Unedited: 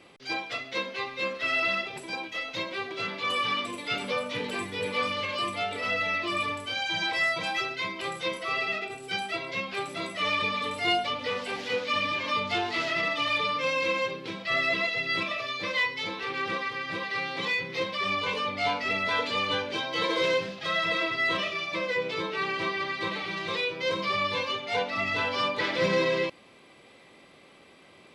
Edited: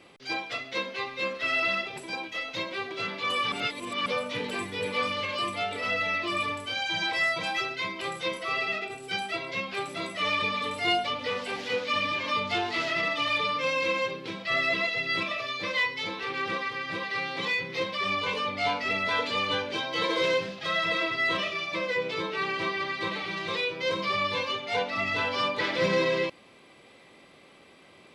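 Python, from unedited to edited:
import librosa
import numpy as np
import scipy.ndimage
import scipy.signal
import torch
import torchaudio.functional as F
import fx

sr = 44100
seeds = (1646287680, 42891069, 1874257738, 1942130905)

y = fx.edit(x, sr, fx.reverse_span(start_s=3.52, length_s=0.54), tone=tone)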